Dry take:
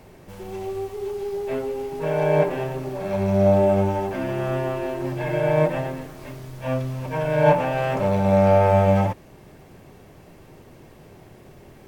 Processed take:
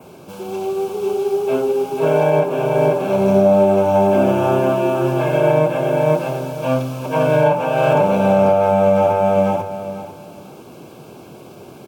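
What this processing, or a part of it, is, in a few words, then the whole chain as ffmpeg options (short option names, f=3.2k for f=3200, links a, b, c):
PA system with an anti-feedback notch: -af "bandreject=f=50:t=h:w=6,bandreject=f=100:t=h:w=6,adynamicequalizer=threshold=0.00178:dfrequency=4500:dqfactor=2.4:tfrequency=4500:tqfactor=2.4:attack=5:release=100:ratio=0.375:range=2.5:mode=cutabove:tftype=bell,highpass=150,asuperstop=centerf=1900:order=4:qfactor=3,aecho=1:1:493|986|1479:0.631|0.133|0.0278,alimiter=limit=-13dB:level=0:latency=1:release=428,volume=8dB"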